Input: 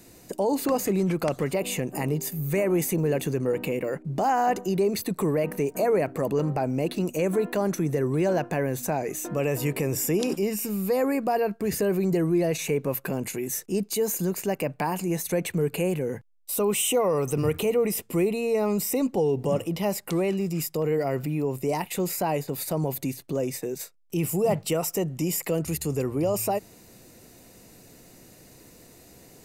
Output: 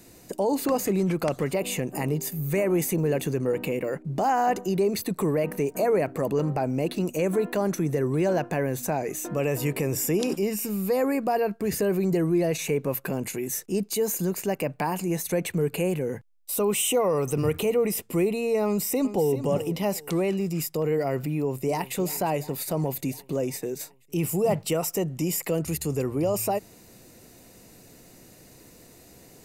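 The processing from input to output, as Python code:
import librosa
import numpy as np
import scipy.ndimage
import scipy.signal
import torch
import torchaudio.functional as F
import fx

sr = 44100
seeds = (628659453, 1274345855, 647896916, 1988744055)

y = fx.echo_throw(x, sr, start_s=18.65, length_s=0.68, ms=390, feedback_pct=25, wet_db=-12.0)
y = fx.echo_throw(y, sr, start_s=21.29, length_s=0.66, ms=350, feedback_pct=70, wet_db=-16.5)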